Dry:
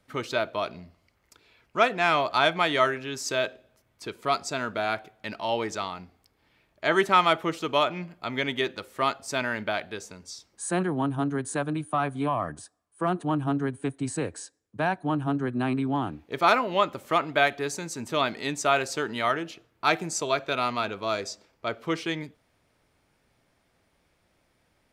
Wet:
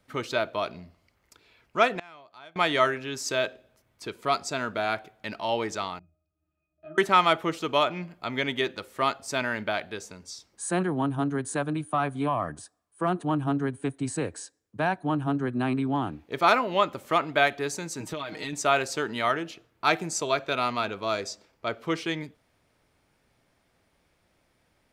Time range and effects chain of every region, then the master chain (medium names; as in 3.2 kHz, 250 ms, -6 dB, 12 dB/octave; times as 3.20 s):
1.95–2.56 s: high-pass 53 Hz + inverted gate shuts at -20 dBFS, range -26 dB
5.99–6.98 s: compression 3:1, threshold -28 dBFS + pitch-class resonator D#, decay 0.26 s
18.00–18.53 s: comb 6.4 ms, depth 80% + compression 16:1, threshold -29 dBFS
whole clip: none